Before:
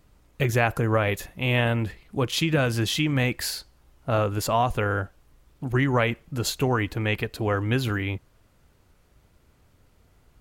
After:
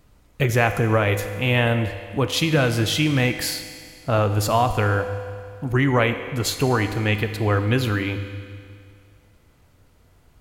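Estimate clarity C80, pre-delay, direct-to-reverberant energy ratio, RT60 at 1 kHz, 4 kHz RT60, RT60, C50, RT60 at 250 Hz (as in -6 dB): 10.5 dB, 4 ms, 8.0 dB, 2.2 s, 2.1 s, 2.2 s, 9.5 dB, 2.2 s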